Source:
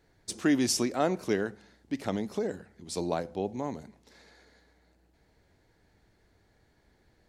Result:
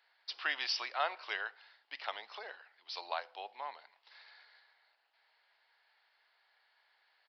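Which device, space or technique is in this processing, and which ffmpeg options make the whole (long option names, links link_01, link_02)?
musical greeting card: -af "aresample=11025,aresample=44100,highpass=frequency=860:width=0.5412,highpass=frequency=860:width=1.3066,equalizer=frequency=2900:width_type=o:width=0.3:gain=5.5,volume=1dB"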